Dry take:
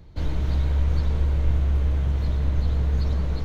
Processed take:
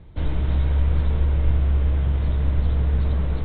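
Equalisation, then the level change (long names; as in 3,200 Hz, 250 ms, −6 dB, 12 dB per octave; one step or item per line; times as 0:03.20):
Butterworth low-pass 3,800 Hz 96 dB per octave
+2.0 dB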